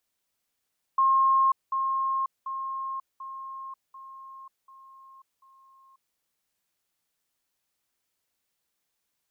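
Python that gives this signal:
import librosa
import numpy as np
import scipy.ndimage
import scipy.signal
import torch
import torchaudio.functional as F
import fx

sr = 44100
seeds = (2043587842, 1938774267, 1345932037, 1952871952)

y = fx.level_ladder(sr, hz=1070.0, from_db=-18.0, step_db=-6.0, steps=7, dwell_s=0.54, gap_s=0.2)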